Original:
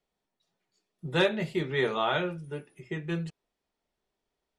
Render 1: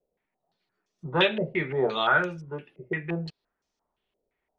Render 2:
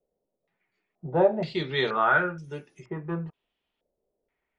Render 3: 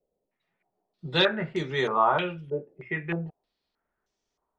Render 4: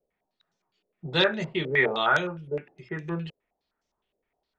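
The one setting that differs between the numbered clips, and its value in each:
step-sequenced low-pass, rate: 5.8 Hz, 2.1 Hz, 3.2 Hz, 9.7 Hz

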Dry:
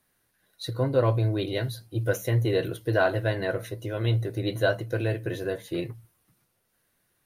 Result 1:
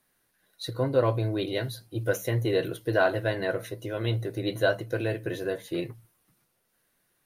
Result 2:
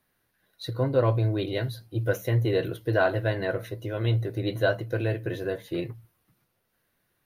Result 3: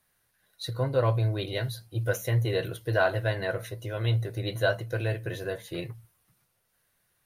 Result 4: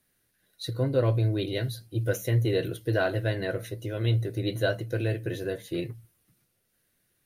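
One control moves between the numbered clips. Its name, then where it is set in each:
peaking EQ, frequency: 81 Hz, 8.3 kHz, 290 Hz, 950 Hz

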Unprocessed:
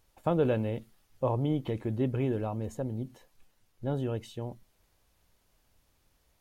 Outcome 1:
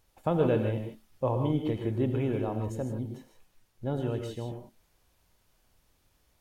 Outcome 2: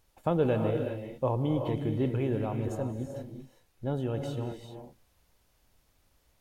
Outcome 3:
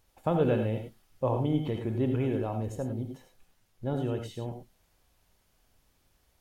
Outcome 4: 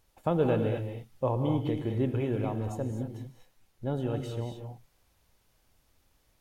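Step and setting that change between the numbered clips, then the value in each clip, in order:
gated-style reverb, gate: 180 ms, 420 ms, 120 ms, 270 ms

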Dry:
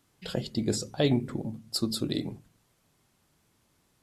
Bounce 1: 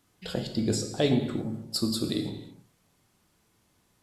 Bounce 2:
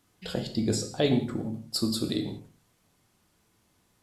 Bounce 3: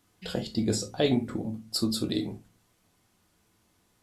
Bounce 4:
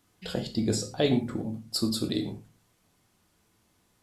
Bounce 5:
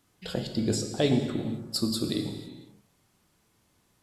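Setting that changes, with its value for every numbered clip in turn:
gated-style reverb, gate: 350 ms, 210 ms, 90 ms, 140 ms, 530 ms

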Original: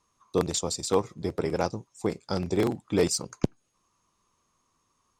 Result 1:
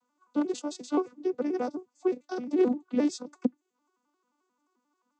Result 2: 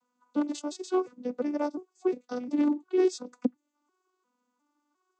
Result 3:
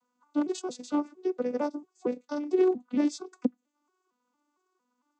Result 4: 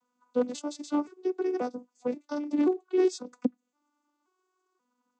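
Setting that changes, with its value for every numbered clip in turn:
vocoder on a broken chord, a note every: 88 ms, 353 ms, 228 ms, 532 ms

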